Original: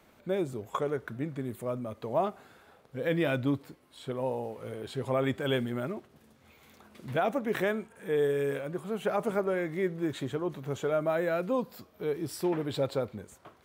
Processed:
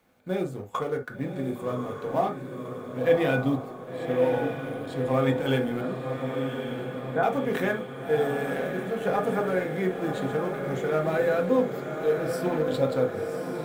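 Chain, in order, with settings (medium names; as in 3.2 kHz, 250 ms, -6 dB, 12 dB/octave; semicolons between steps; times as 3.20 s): companding laws mixed up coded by A; 5.81–7.23 s: Chebyshev band-pass 160–1800 Hz, order 4; echo that smears into a reverb 1096 ms, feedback 63%, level -6 dB; reverberation, pre-delay 3 ms, DRR 1.5 dB; trim +1.5 dB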